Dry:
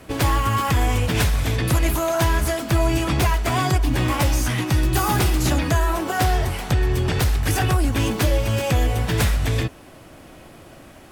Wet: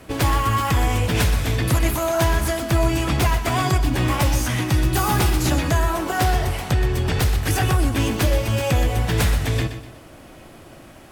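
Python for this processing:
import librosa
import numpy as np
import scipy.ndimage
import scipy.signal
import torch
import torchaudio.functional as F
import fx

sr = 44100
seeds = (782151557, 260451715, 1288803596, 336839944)

y = fx.echo_feedback(x, sr, ms=124, feedback_pct=36, wet_db=-11)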